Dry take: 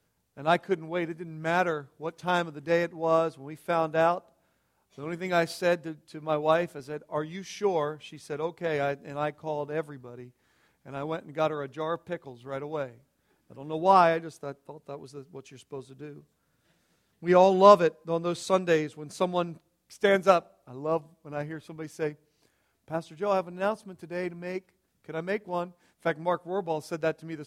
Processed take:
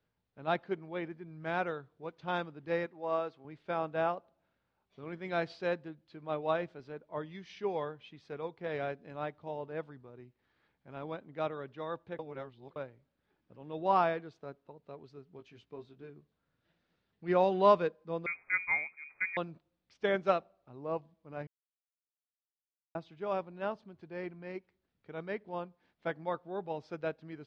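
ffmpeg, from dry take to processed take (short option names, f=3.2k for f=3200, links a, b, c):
-filter_complex "[0:a]asettb=1/sr,asplit=3[a][b][c];[a]atrim=end=2.864[d];[b]atrim=start=2.86:end=3.45,asetpts=PTS-STARTPTS,afade=t=in:d=0.004:c=qsin,afade=t=out:st=0.586:d=0.004:c=qsin,highpass=f=340:p=1[e];[c]atrim=start=3.446[f];[d][e]acrossfade=d=0.004:c1=hsin:c2=qsin[g];[g][f]acrossfade=d=0.004:c1=qsin:c2=hsin,asettb=1/sr,asplit=3[h][i][j];[h]atrim=end=15.374[k];[i]atrim=start=15.37:end=16.1,asetpts=PTS-STARTPTS,afade=t=in:d=0.004:c=qsin,afade=t=out:st=0.726:d=0.004:c=qsin,asplit=2[l][m];[m]adelay=18,volume=-6dB[n];[l][n]amix=inputs=2:normalize=0,atrim=end_sample=32193[o];[j]atrim=start=16.096[p];[k][o]acrossfade=d=0.004:c1=hsin:c2=qsin[q];[q][p]acrossfade=d=0.004:c1=qsin:c2=hsin,asettb=1/sr,asplit=3[r][s][t];[r]atrim=end=18.264[u];[s]atrim=start=18.26:end=19.37,asetpts=PTS-STARTPTS,afade=t=in:d=0.004:c=qsin,afade=t=out:st=1.106:d=0.004:c=qsin,lowpass=f=2.2k:t=q:w=0.5098,lowpass=f=2.2k:t=q:w=0.6013,lowpass=f=2.2k:t=q:w=0.9,lowpass=f=2.2k:t=q:w=2.563,afreqshift=-2600[v];[t]atrim=start=19.366[w];[u][v]acrossfade=d=0.004:c1=hsin:c2=qsin[x];[x][w]acrossfade=d=0.004:c1=qsin:c2=hsin,asplit=5[y][z][aa][ab][ac];[y]atrim=end=12.192[ad];[z]atrim=start=12.188:end=12.762,asetpts=PTS-STARTPTS,areverse[ae];[aa]atrim=start=12.758:end=21.47,asetpts=PTS-STARTPTS,afade=t=out:st=8.708:d=0.004:c=hsin[af];[ab]atrim=start=21.47:end=22.95,asetpts=PTS-STARTPTS,volume=0[ag];[ac]atrim=start=22.95,asetpts=PTS-STARTPTS,afade=t=in:d=0.004:c=hsin[ah];[ad][ae]acrossfade=d=0.004:c1=hsin:c2=hsin[ai];[af][ag][ah]concat=n=3:v=0:a=1[aj];[ai][aj]acrossfade=d=0.004:c1=hsin:c2=hsin,lowpass=f=4.3k:w=0.5412,lowpass=f=4.3k:w=1.3066,volume=-8dB"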